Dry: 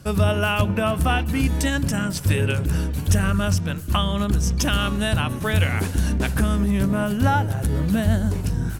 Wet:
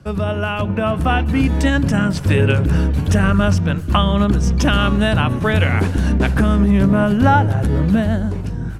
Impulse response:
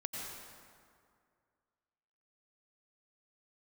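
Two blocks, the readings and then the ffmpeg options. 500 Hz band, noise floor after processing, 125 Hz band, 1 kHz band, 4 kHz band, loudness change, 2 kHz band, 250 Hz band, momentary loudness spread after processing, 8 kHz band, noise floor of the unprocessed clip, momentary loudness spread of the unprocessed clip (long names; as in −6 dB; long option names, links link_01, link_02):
+6.0 dB, −24 dBFS, +5.0 dB, +6.0 dB, +2.0 dB, +5.5 dB, +4.5 dB, +6.5 dB, 6 LU, −4.0 dB, −29 dBFS, 3 LU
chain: -filter_complex "[0:a]acrossover=split=150|4900[link_01][link_02][link_03];[link_01]alimiter=limit=-21dB:level=0:latency=1[link_04];[link_04][link_02][link_03]amix=inputs=3:normalize=0,dynaudnorm=framelen=150:gausssize=13:maxgain=11.5dB,aemphasis=mode=reproduction:type=75fm"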